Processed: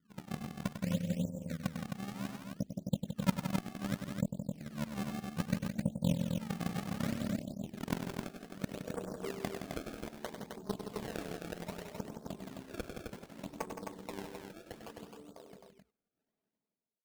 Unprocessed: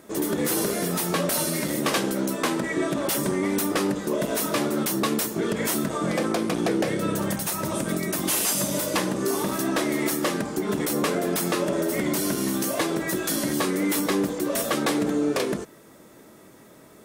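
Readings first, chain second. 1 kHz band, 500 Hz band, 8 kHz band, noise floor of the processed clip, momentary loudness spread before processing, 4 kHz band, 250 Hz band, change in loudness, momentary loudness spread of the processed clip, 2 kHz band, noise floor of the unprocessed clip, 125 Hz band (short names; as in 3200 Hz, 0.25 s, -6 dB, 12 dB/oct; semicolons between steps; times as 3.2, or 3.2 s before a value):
-16.5 dB, -18.0 dB, -24.5 dB, under -85 dBFS, 3 LU, -18.5 dB, -13.0 dB, -15.0 dB, 13 LU, -18.0 dB, -50 dBFS, -6.0 dB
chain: ending faded out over 3.28 s; LPF 1300 Hz 24 dB/oct; reverb removal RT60 1.1 s; tilt shelf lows +7 dB, about 710 Hz; comb 4.5 ms, depth 50%; dynamic EQ 300 Hz, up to -7 dB, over -36 dBFS, Q 1.6; low-pass sweep 180 Hz -> 900 Hz, 6.41–10.24; AM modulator 76 Hz, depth 20%; added harmonics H 3 -10 dB, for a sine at -8.5 dBFS; decimation with a swept rate 26×, swing 160% 0.64 Hz; soft clip -15 dBFS, distortion -14 dB; on a send: tapped delay 99/168/262 ms -8.5/-8.5/-5 dB; on the sum: gain -1.5 dB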